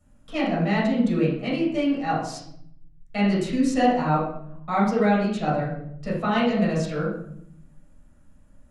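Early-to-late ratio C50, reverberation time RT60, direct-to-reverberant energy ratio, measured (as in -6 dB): 2.0 dB, 0.70 s, -8.5 dB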